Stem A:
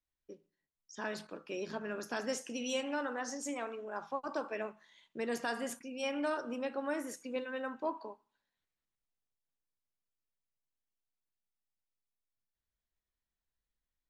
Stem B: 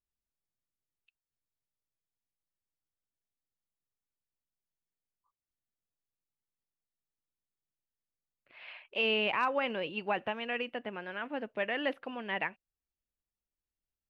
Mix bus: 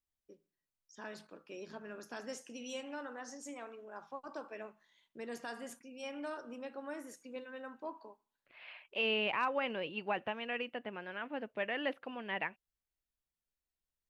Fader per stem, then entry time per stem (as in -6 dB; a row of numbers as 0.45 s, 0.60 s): -7.5 dB, -3.5 dB; 0.00 s, 0.00 s